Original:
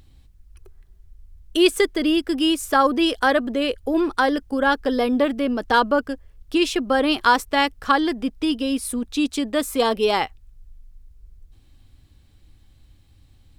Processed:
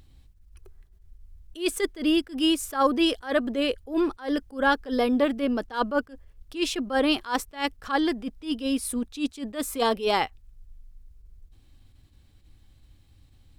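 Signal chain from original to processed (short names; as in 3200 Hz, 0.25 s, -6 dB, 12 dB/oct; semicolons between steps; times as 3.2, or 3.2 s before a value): attack slew limiter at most 200 dB/s; gain -2.5 dB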